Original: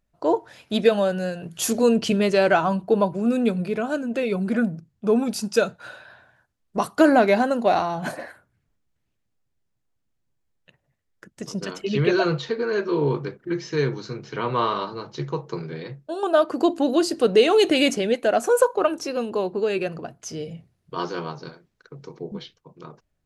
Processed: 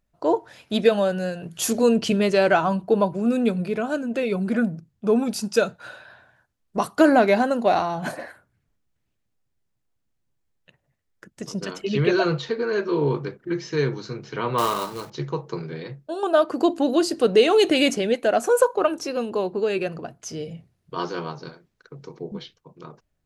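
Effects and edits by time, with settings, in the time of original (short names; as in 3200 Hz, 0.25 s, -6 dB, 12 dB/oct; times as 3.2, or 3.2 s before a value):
14.58–15.1 companded quantiser 4-bit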